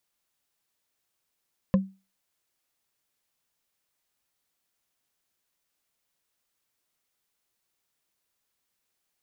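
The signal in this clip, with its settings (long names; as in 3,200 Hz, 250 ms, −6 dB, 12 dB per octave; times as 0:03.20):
struck wood, lowest mode 192 Hz, decay 0.29 s, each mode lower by 6.5 dB, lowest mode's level −14 dB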